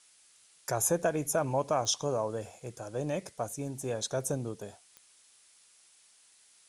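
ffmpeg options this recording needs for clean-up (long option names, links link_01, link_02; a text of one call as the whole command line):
ffmpeg -i in.wav -af "adeclick=threshold=4,afftdn=noise_reduction=15:noise_floor=-62" out.wav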